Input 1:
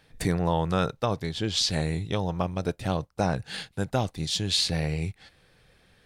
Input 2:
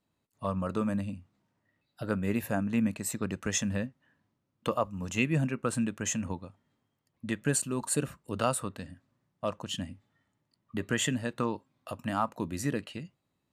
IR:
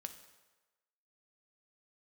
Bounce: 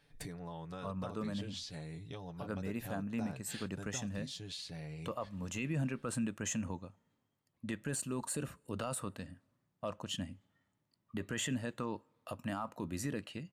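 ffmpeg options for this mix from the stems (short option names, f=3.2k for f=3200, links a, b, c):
-filter_complex "[0:a]aecho=1:1:7:0.56,acompressor=threshold=-33dB:ratio=5,volume=-10.5dB,asplit=2[a][b];[1:a]adelay=400,volume=-4.5dB,asplit=2[c][d];[d]volume=-19dB[e];[b]apad=whole_len=614219[f];[c][f]sidechaincompress=threshold=-47dB:ratio=8:attack=37:release=1080[g];[2:a]atrim=start_sample=2205[h];[e][h]afir=irnorm=-1:irlink=0[i];[a][g][i]amix=inputs=3:normalize=0,deesser=0.6,alimiter=level_in=3.5dB:limit=-24dB:level=0:latency=1:release=15,volume=-3.5dB"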